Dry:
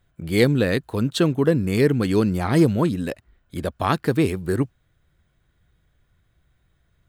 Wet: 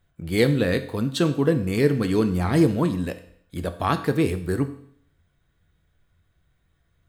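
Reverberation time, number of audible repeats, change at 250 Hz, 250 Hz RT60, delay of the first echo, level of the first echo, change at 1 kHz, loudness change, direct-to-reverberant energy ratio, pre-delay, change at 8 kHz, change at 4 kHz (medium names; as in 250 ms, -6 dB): 0.60 s, no echo, -1.5 dB, 0.65 s, no echo, no echo, -1.5 dB, -1.5 dB, 7.5 dB, 4 ms, -2.0 dB, -2.0 dB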